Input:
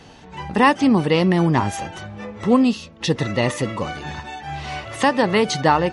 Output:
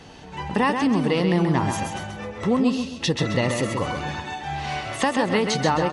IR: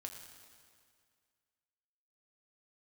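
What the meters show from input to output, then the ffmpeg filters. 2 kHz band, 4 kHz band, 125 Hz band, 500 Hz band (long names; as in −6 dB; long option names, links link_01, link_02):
−3.0 dB, −1.5 dB, −2.5 dB, −3.5 dB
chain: -filter_complex "[0:a]acompressor=threshold=-19dB:ratio=3,asplit=2[link_01][link_02];[link_02]aecho=0:1:132|264|396|528:0.501|0.165|0.0546|0.018[link_03];[link_01][link_03]amix=inputs=2:normalize=0"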